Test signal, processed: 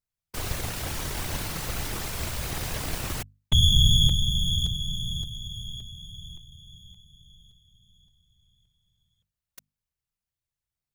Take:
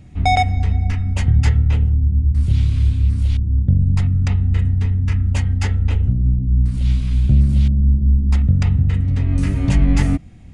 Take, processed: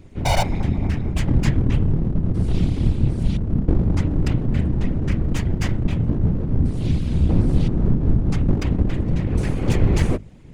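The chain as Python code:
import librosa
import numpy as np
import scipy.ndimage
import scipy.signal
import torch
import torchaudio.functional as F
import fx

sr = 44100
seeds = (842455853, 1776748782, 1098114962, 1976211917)

y = np.abs(x)
y = fx.whisperise(y, sr, seeds[0])
y = fx.hum_notches(y, sr, base_hz=50, count=5)
y = F.gain(torch.from_numpy(y), -1.5).numpy()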